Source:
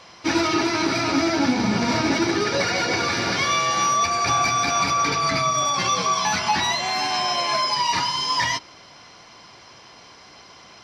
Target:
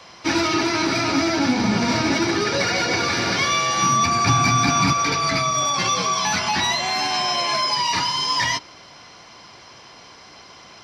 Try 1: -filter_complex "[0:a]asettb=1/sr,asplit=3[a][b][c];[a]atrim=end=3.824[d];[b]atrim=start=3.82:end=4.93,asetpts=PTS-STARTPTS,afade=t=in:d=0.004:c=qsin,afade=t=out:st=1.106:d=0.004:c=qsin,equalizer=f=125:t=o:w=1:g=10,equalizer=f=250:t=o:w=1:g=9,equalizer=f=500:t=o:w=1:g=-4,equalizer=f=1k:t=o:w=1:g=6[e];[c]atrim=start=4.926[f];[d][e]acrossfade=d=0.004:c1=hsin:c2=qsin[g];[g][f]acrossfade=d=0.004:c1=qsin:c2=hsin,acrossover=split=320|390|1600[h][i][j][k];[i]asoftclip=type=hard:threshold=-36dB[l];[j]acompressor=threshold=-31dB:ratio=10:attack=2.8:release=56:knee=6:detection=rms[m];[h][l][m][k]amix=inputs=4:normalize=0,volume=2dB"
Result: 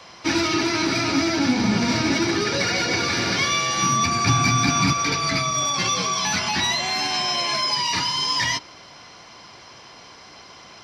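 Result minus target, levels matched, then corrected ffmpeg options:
compressor: peak gain reduction +7 dB
-filter_complex "[0:a]asettb=1/sr,asplit=3[a][b][c];[a]atrim=end=3.824[d];[b]atrim=start=3.82:end=4.93,asetpts=PTS-STARTPTS,afade=t=in:d=0.004:c=qsin,afade=t=out:st=1.106:d=0.004:c=qsin,equalizer=f=125:t=o:w=1:g=10,equalizer=f=250:t=o:w=1:g=9,equalizer=f=500:t=o:w=1:g=-4,equalizer=f=1k:t=o:w=1:g=6[e];[c]atrim=start=4.926[f];[d][e]acrossfade=d=0.004:c1=hsin:c2=qsin[g];[g][f]acrossfade=d=0.004:c1=qsin:c2=hsin,acrossover=split=320|390|1600[h][i][j][k];[i]asoftclip=type=hard:threshold=-36dB[l];[j]acompressor=threshold=-23.5dB:ratio=10:attack=2.8:release=56:knee=6:detection=rms[m];[h][l][m][k]amix=inputs=4:normalize=0,volume=2dB"

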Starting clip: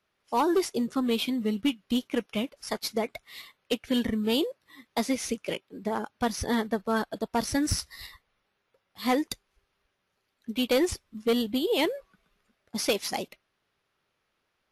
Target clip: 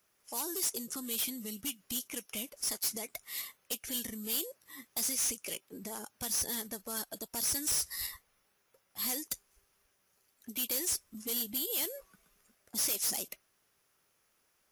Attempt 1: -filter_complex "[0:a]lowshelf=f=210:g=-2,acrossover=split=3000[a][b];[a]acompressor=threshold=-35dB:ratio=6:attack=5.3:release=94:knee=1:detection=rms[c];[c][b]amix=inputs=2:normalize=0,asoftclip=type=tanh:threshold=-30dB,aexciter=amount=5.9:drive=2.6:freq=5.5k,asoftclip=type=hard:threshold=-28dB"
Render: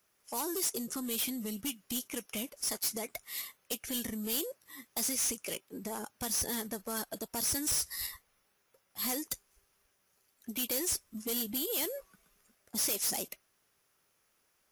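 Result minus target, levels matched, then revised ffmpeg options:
compressor: peak gain reduction -5.5 dB
-filter_complex "[0:a]lowshelf=f=210:g=-2,acrossover=split=3000[a][b];[a]acompressor=threshold=-41.5dB:ratio=6:attack=5.3:release=94:knee=1:detection=rms[c];[c][b]amix=inputs=2:normalize=0,asoftclip=type=tanh:threshold=-30dB,aexciter=amount=5.9:drive=2.6:freq=5.5k,asoftclip=type=hard:threshold=-28dB"

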